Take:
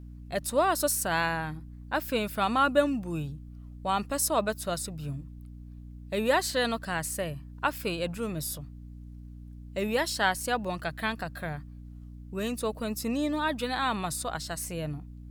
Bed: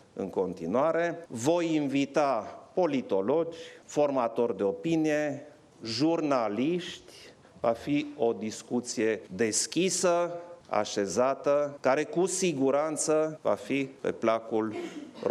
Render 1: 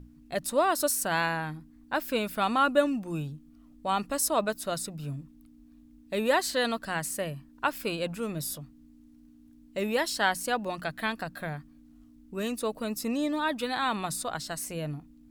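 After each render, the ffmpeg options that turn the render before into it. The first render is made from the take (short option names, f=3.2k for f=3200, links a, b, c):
-af "bandreject=f=60:t=h:w=6,bandreject=f=120:t=h:w=6,bandreject=f=180:t=h:w=6"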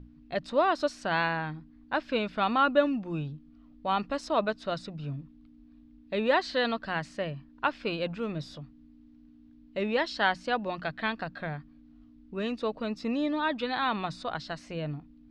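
-af "lowpass=f=4.4k:w=0.5412,lowpass=f=4.4k:w=1.3066"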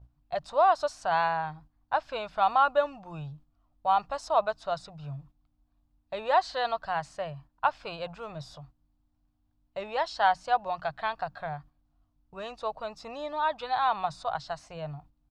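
-af "agate=range=-8dB:threshold=-48dB:ratio=16:detection=peak,firequalizer=gain_entry='entry(130,0);entry(230,-20);entry(730,7);entry(1900,-7);entry(6800,2)':delay=0.05:min_phase=1"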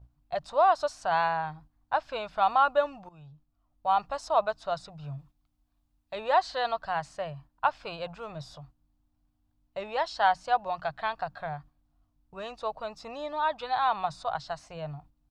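-filter_complex "[0:a]asettb=1/sr,asplit=3[a][b][c];[a]atrim=end=5.184[d];[b]atrim=start=5.18:end=6.16,asetpts=PTS-STARTPTS,afade=t=in:d=0.004:c=qsin,afade=t=out:st=0.976:d=0.004:c=qsin,tiltshelf=f=1.5k:g=-3.5[e];[c]atrim=start=6.156[f];[d][e]acrossfade=d=0.004:c1=hsin:c2=qsin[g];[g][f]acrossfade=d=0.004:c1=qsin:c2=hsin,asplit=2[h][i];[h]atrim=end=3.09,asetpts=PTS-STARTPTS,afade=t=out:st=3.086:d=0.004:c=hsin:silence=0.141254[j];[i]atrim=start=3.09,asetpts=PTS-STARTPTS,afade=t=in:d=0.91:silence=0.141254[k];[j][k]concat=n=2:v=0:a=1"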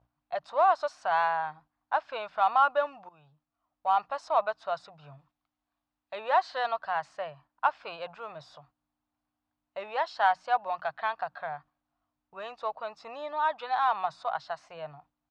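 -filter_complex "[0:a]asplit=2[a][b];[b]asoftclip=type=hard:threshold=-27dB,volume=-12dB[c];[a][c]amix=inputs=2:normalize=0,bandpass=f=1.3k:t=q:w=0.63:csg=0"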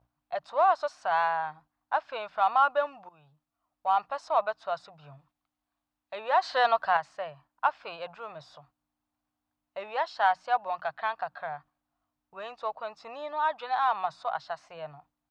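-filter_complex "[0:a]asettb=1/sr,asplit=3[a][b][c];[a]atrim=end=6.424[d];[b]atrim=start=6.42:end=6.97,asetpts=PTS-STARTPTS,afade=t=in:d=0.004:c=qsin,afade=t=out:st=0.546:d=0.004:c=qsin,acontrast=68[e];[c]atrim=start=6.966[f];[d][e]acrossfade=d=0.004:c1=hsin:c2=qsin[g];[g][f]acrossfade=d=0.004:c1=qsin:c2=hsin"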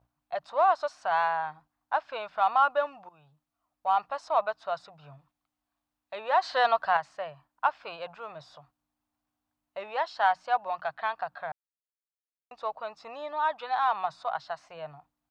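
-filter_complex "[0:a]asplit=3[a][b][c];[a]atrim=end=11.52,asetpts=PTS-STARTPTS,afade=t=out:st=11.516:d=0.004:c=hsin[d];[b]atrim=start=11.52:end=12.51,asetpts=PTS-STARTPTS,volume=0[e];[c]atrim=start=12.51,asetpts=PTS-STARTPTS,afade=t=in:d=0.004:c=hsin[f];[d][e][f]concat=n=3:v=0:a=1"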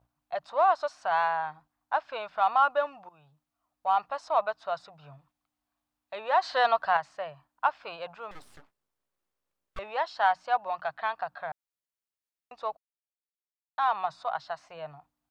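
-filter_complex "[0:a]asettb=1/sr,asplit=3[a][b][c];[a]atrim=end=8.314[d];[b]atrim=start=8.31:end=9.79,asetpts=PTS-STARTPTS,afade=t=in:d=0.004:c=qsin,afade=t=out:st=1.476:d=0.004:c=qsin,aeval=exprs='abs(val(0))':c=same[e];[c]atrim=start=9.786[f];[d][e]acrossfade=d=0.004:c1=hsin:c2=qsin[g];[g][f]acrossfade=d=0.004:c1=qsin:c2=hsin,asplit=3[h][i][j];[h]atrim=end=12.77,asetpts=PTS-STARTPTS,afade=t=out:st=12.766:d=0.004:c=hsin[k];[i]atrim=start=12.77:end=13.78,asetpts=PTS-STARTPTS,volume=0[l];[j]atrim=start=13.78,asetpts=PTS-STARTPTS,afade=t=in:d=0.004:c=hsin[m];[k][l][m]concat=n=3:v=0:a=1"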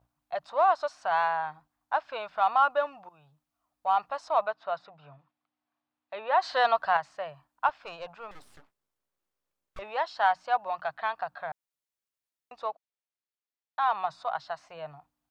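-filter_complex "[0:a]asettb=1/sr,asplit=3[a][b][c];[a]atrim=end=4.484[d];[b]atrim=start=4.48:end=6.4,asetpts=PTS-STARTPTS,afade=t=in:d=0.004:c=qsin,afade=t=out:st=1.916:d=0.004:c=qsin,highpass=150,lowpass=3.5k[e];[c]atrim=start=6.396[f];[d][e]acrossfade=d=0.004:c1=hsin:c2=qsin[g];[g][f]acrossfade=d=0.004:c1=qsin:c2=hsin,asettb=1/sr,asplit=3[h][i][j];[h]atrim=end=7.694[k];[i]atrim=start=7.69:end=9.82,asetpts=PTS-STARTPTS,afade=t=in:d=0.004:c=qsin,afade=t=out:st=2.126:d=0.004:c=qsin,aeval=exprs='(tanh(25.1*val(0)+0.4)-tanh(0.4))/25.1':c=same[l];[j]atrim=start=9.816[m];[k][l]acrossfade=d=0.004:c1=hsin:c2=qsin[n];[n][m]acrossfade=d=0.004:c1=qsin:c2=hsin,asettb=1/sr,asplit=3[o][p][q];[o]atrim=end=12.664[r];[p]atrim=start=12.66:end=13.9,asetpts=PTS-STARTPTS,afade=t=in:d=0.004:c=qsin,afade=t=out:st=1.236:d=0.004:c=qsin,highpass=230,lowpass=5.1k[s];[q]atrim=start=13.896[t];[r][s]acrossfade=d=0.004:c1=hsin:c2=qsin[u];[u][t]acrossfade=d=0.004:c1=qsin:c2=hsin"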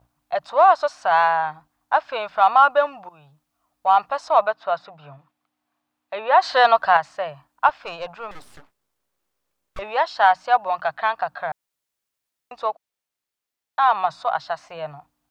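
-af "volume=9dB,alimiter=limit=-3dB:level=0:latency=1"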